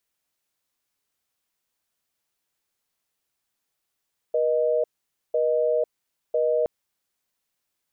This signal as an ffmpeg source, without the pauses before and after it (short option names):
-f lavfi -i "aevalsrc='0.0794*(sin(2*PI*480*t)+sin(2*PI*620*t))*clip(min(mod(t,1),0.5-mod(t,1))/0.005,0,1)':d=2.32:s=44100"